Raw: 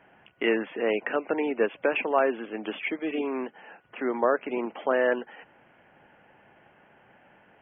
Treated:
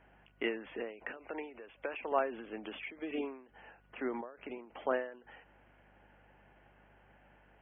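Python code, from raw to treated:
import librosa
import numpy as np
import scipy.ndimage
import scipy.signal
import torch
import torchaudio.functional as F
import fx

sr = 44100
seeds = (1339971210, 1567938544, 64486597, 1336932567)

y = fx.highpass(x, sr, hz=450.0, slope=6, at=(1.17, 2.12))
y = fx.add_hum(y, sr, base_hz=50, snr_db=31)
y = fx.end_taper(y, sr, db_per_s=110.0)
y = y * librosa.db_to_amplitude(-7.0)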